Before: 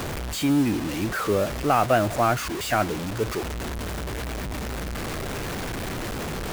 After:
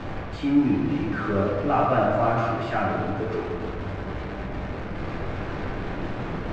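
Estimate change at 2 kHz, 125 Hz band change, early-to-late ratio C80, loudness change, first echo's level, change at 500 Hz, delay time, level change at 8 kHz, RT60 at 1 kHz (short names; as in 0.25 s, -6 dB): -2.5 dB, +0.5 dB, 2.5 dB, 0.0 dB, none, 0.0 dB, none, under -20 dB, 1.6 s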